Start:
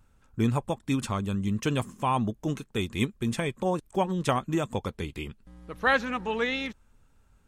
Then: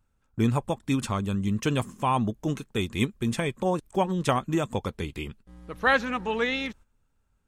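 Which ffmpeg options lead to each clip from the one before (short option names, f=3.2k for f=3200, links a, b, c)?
-af "agate=range=-11dB:threshold=-49dB:ratio=16:detection=peak,volume=1.5dB"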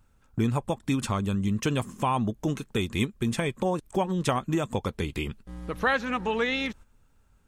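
-af "acompressor=threshold=-39dB:ratio=2,volume=8.5dB"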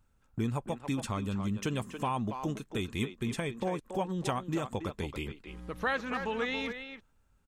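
-filter_complex "[0:a]asplit=2[a][b];[b]adelay=280,highpass=300,lowpass=3.4k,asoftclip=type=hard:threshold=-18dB,volume=-7dB[c];[a][c]amix=inputs=2:normalize=0,volume=-6.5dB"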